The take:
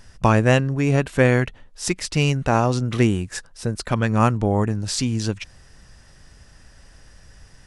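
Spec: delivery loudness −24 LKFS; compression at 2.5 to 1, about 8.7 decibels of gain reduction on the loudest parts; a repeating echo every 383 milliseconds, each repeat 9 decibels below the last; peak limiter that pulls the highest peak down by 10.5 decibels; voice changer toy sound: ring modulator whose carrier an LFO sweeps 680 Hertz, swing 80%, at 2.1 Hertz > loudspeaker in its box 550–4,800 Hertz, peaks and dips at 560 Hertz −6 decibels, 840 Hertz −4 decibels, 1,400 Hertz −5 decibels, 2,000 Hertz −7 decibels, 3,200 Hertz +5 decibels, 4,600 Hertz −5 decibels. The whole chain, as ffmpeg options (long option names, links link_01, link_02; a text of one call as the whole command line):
ffmpeg -i in.wav -af "acompressor=threshold=-24dB:ratio=2.5,alimiter=limit=-20.5dB:level=0:latency=1,aecho=1:1:383|766|1149|1532:0.355|0.124|0.0435|0.0152,aeval=exprs='val(0)*sin(2*PI*680*n/s+680*0.8/2.1*sin(2*PI*2.1*n/s))':channel_layout=same,highpass=550,equalizer=frequency=560:width_type=q:width=4:gain=-6,equalizer=frequency=840:width_type=q:width=4:gain=-4,equalizer=frequency=1400:width_type=q:width=4:gain=-5,equalizer=frequency=2000:width_type=q:width=4:gain=-7,equalizer=frequency=3200:width_type=q:width=4:gain=5,equalizer=frequency=4600:width_type=q:width=4:gain=-5,lowpass=frequency=4800:width=0.5412,lowpass=frequency=4800:width=1.3066,volume=15dB" out.wav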